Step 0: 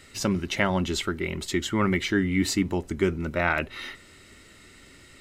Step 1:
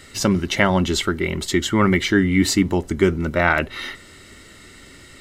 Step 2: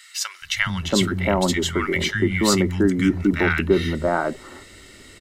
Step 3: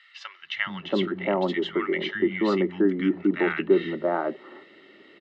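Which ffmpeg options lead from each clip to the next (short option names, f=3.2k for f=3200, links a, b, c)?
-af "bandreject=f=2.5k:w=11,volume=7dB"
-filter_complex "[0:a]acrossover=split=160|1300[a][b][c];[a]adelay=420[d];[b]adelay=680[e];[d][e][c]amix=inputs=3:normalize=0"
-af "highpass=f=230:w=0.5412,highpass=f=230:w=1.3066,equalizer=f=250:t=q:w=4:g=-9,equalizer=f=480:t=q:w=4:g=-5,equalizer=f=690:t=q:w=4:g=-5,equalizer=f=1k:t=q:w=4:g=-7,equalizer=f=1.5k:t=q:w=4:g=-10,equalizer=f=2.3k:t=q:w=4:g=-9,lowpass=f=2.7k:w=0.5412,lowpass=f=2.7k:w=1.3066,volume=1.5dB"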